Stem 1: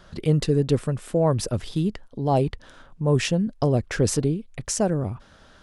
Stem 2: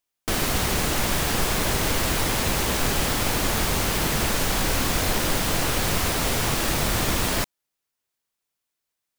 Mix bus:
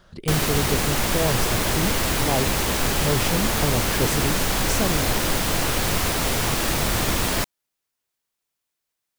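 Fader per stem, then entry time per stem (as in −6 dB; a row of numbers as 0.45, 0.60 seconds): −4.0, +1.0 decibels; 0.00, 0.00 seconds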